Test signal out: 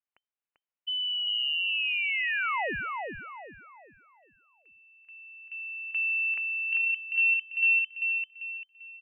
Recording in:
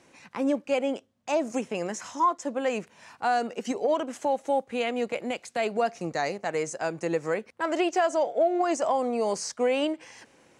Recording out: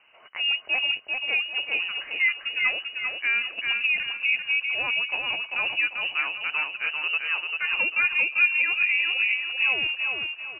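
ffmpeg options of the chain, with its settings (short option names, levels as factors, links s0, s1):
-af "aecho=1:1:393|786|1179|1572|1965:0.631|0.227|0.0818|0.0294|0.0106,lowpass=f=2600:t=q:w=0.5098,lowpass=f=2600:t=q:w=0.6013,lowpass=f=2600:t=q:w=0.9,lowpass=f=2600:t=q:w=2.563,afreqshift=-3100"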